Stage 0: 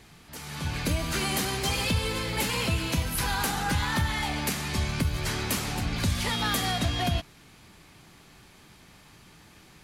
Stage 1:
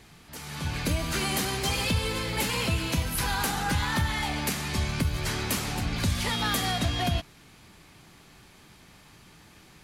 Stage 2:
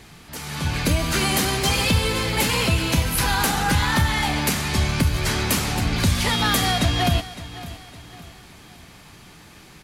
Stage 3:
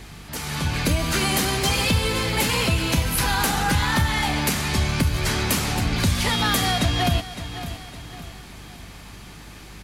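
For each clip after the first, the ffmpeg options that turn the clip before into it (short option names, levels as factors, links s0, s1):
-af anull
-af "aecho=1:1:560|1120|1680|2240:0.158|0.0634|0.0254|0.0101,volume=2.24"
-filter_complex "[0:a]asplit=2[s0][s1];[s1]acompressor=threshold=0.0398:ratio=6,volume=1.12[s2];[s0][s2]amix=inputs=2:normalize=0,aeval=exprs='val(0)+0.01*(sin(2*PI*50*n/s)+sin(2*PI*2*50*n/s)/2+sin(2*PI*3*50*n/s)/3+sin(2*PI*4*50*n/s)/4+sin(2*PI*5*50*n/s)/5)':c=same,volume=0.668"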